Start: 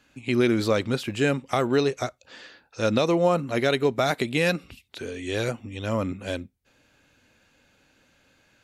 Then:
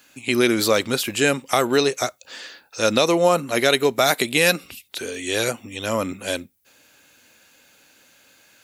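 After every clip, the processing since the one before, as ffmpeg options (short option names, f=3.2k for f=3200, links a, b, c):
-af "aemphasis=mode=production:type=bsi,volume=5.5dB"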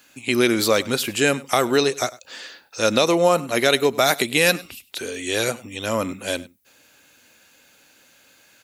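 -af "aecho=1:1:100:0.0944"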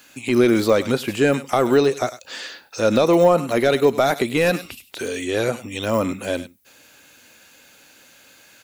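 -af "deesser=0.85,volume=4.5dB"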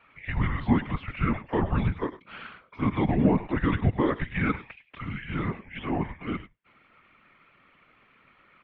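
-af "highpass=f=350:t=q:w=0.5412,highpass=f=350:t=q:w=1.307,lowpass=f=3k:t=q:w=0.5176,lowpass=f=3k:t=q:w=0.7071,lowpass=f=3k:t=q:w=1.932,afreqshift=-310,afftfilt=real='hypot(re,im)*cos(2*PI*random(0))':imag='hypot(re,im)*sin(2*PI*random(1))':win_size=512:overlap=0.75"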